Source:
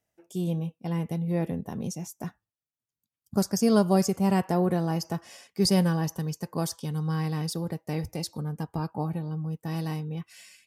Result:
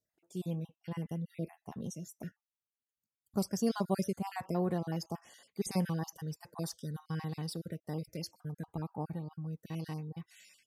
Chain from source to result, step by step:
time-frequency cells dropped at random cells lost 36%
level −7.5 dB

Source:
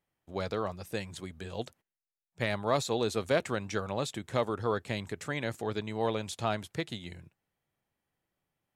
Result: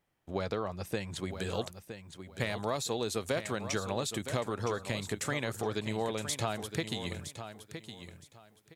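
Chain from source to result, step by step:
high-shelf EQ 5,300 Hz −4 dB, from 0:01.31 +8 dB
downward compressor 6 to 1, threshold −35 dBFS, peak gain reduction 13 dB
repeating echo 965 ms, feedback 22%, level −10 dB
level +5.5 dB

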